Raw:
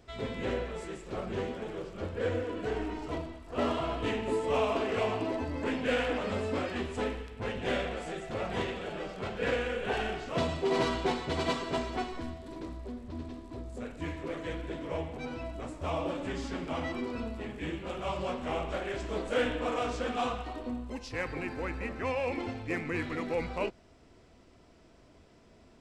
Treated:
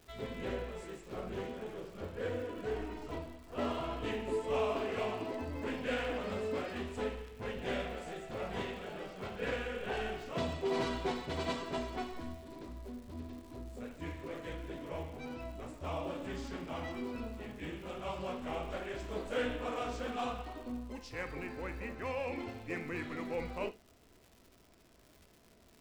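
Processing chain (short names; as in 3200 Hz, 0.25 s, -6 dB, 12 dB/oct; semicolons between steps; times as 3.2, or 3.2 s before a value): crackle 250/s -44 dBFS; on a send: reverb, pre-delay 5 ms, DRR 10 dB; on the sum: gain -6 dB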